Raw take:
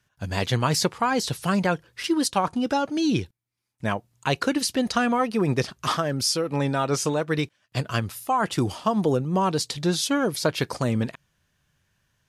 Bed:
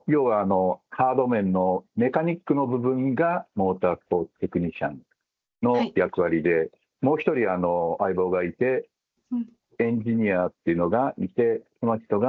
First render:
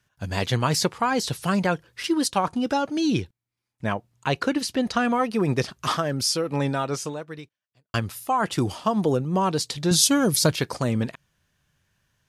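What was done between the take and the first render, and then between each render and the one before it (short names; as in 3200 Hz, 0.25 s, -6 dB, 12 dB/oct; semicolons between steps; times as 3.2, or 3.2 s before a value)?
3.21–5.05 high shelf 5300 Hz -7 dB; 6.68–7.94 fade out quadratic; 9.91–10.56 tone controls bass +9 dB, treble +11 dB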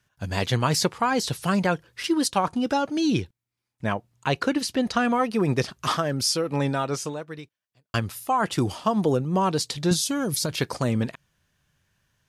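9.93–10.61 compressor, threshold -22 dBFS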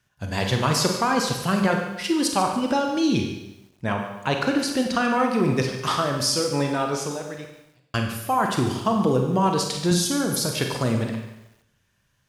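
Schroeder reverb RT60 0.83 s, combs from 31 ms, DRR 3 dB; lo-fi delay 0.145 s, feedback 35%, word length 8-bit, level -13 dB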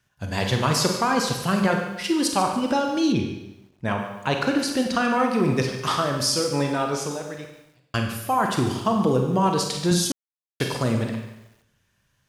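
3.12–3.85 high shelf 3500 Hz -9.5 dB; 10.12–10.6 mute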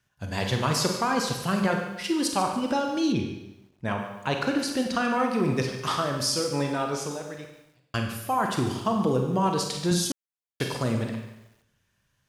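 gain -3.5 dB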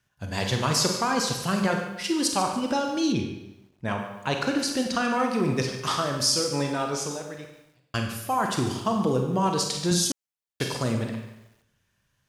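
dynamic EQ 6400 Hz, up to +5 dB, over -46 dBFS, Q 0.94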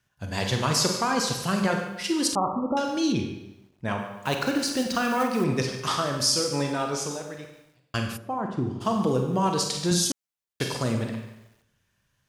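2.35–2.77 brick-wall FIR low-pass 1400 Hz; 4.23–5.46 block floating point 5-bit; 8.16–8.8 band-pass 360 Hz -> 140 Hz, Q 0.55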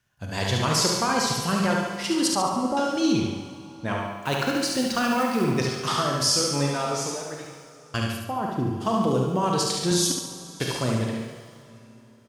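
on a send: feedback echo 71 ms, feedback 47%, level -4.5 dB; on the sum: plate-style reverb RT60 3.5 s, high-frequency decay 0.9×, pre-delay 0 ms, DRR 11.5 dB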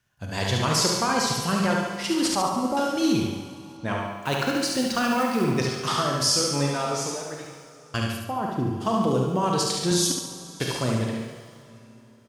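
2.08–3.77 CVSD 64 kbps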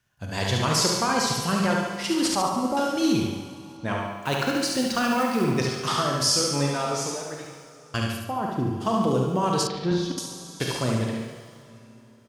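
9.67–10.18 air absorption 290 m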